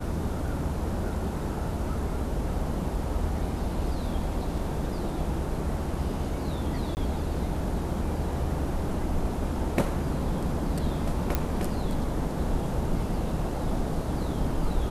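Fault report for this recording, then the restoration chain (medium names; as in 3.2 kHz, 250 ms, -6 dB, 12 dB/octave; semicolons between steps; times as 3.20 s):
6.95–6.97 s: dropout 19 ms
11.35 s: pop -11 dBFS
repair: de-click; interpolate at 6.95 s, 19 ms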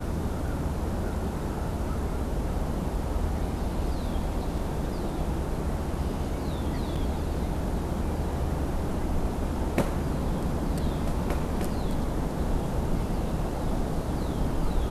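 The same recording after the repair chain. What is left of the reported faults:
nothing left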